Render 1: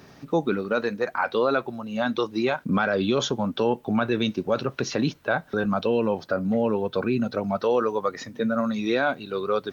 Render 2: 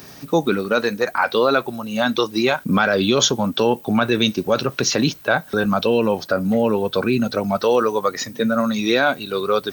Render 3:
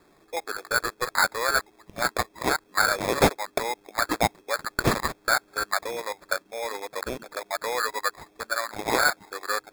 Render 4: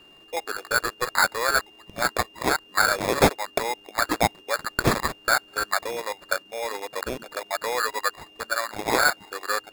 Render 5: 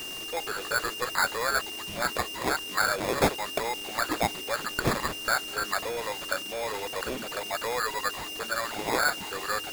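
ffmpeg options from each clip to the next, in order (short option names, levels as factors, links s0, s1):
-af "aemphasis=mode=production:type=75kf,volume=1.78"
-af "highpass=1100,afwtdn=0.0447,acrusher=samples=15:mix=1:aa=0.000001"
-af "aeval=exprs='val(0)+0.00251*sin(2*PI*2800*n/s)':c=same,volume=1.19"
-af "aeval=exprs='val(0)+0.5*0.0531*sgn(val(0))':c=same,volume=0.473"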